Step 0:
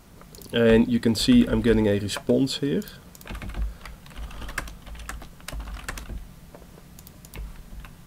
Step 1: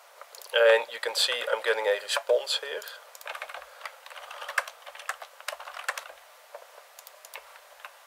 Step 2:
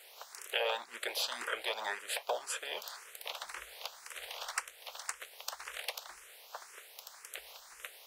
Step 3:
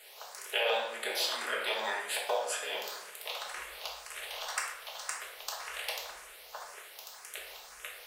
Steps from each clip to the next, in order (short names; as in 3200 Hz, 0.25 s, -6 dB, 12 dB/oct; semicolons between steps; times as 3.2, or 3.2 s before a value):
elliptic high-pass 540 Hz, stop band 50 dB; high shelf 3900 Hz -6 dB; gain +5.5 dB
spectral limiter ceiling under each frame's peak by 18 dB; compressor 2:1, threshold -37 dBFS, peak gain reduction 12.5 dB; endless phaser +1.9 Hz; gain +1 dB
shoebox room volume 260 m³, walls mixed, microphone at 1.4 m